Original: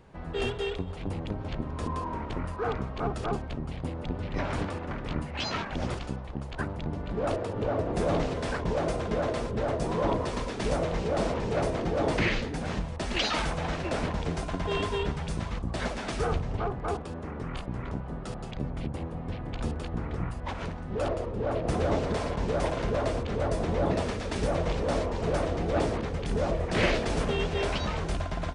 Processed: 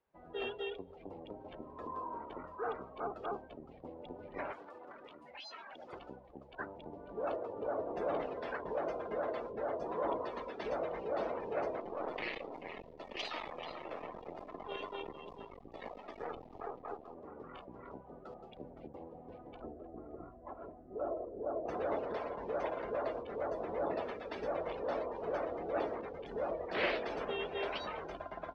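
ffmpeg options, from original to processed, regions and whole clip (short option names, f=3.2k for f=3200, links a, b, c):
-filter_complex "[0:a]asettb=1/sr,asplit=3[a][b][c];[a]atrim=end=4.524[d];[b]atrim=start=4.52:end=5.93,asetpts=PTS-STARTPTS,afade=t=in:d=0.004:c=qsin,afade=t=out:st=1.406:d=0.004:c=qsin,aemphasis=mode=production:type=bsi,acompressor=threshold=-36dB:ratio=6:attack=3.2:release=140:knee=1:detection=peak[e];[c]atrim=start=5.926[f];[d][e]acrossfade=d=0.004:c1=hsin:c2=qsin[g];[g][f]acrossfade=d=0.004:c1=qsin:c2=hsin,asettb=1/sr,asplit=3[h][i][j];[h]atrim=end=11.804[k];[i]atrim=start=11.8:end=17.17,asetpts=PTS-STARTPTS,afade=t=in:d=0.004:c=qsin,afade=t=out:st=5.366:d=0.004:c=qsin,asuperstop=centerf=1500:order=4:qfactor=4.4,aecho=1:1:436:0.376,atrim=end_sample=236817,aeval=exprs='max(val(0),0)':c=same[l];[j]atrim=start=17.166[m];[k][l]acrossfade=d=0.004:c1=hsin:c2=qsin[n];[n][m]acrossfade=d=0.004:c1=qsin:c2=hsin,asettb=1/sr,asplit=3[o][p][q];[o]atrim=end=19.614[r];[p]atrim=start=19.61:end=21.66,asetpts=PTS-STARTPTS,afade=t=in:d=0.004:c=qsin,afade=t=out:st=2.046:d=0.004:c=qsin,lowpass=1.2k,bandreject=f=950:w=9.8,aecho=1:1:3:0.33,atrim=end_sample=90405[s];[q]atrim=start=21.656[t];[r][s]acrossfade=d=0.004:c1=hsin:c2=qsin[u];[u][t]acrossfade=d=0.004:c1=qsin:c2=hsin,afftdn=nr=19:nf=-39,acrossover=split=310 5500:gain=0.0891 1 0.1[v][w][x];[v][w][x]amix=inputs=3:normalize=0,volume=-6dB"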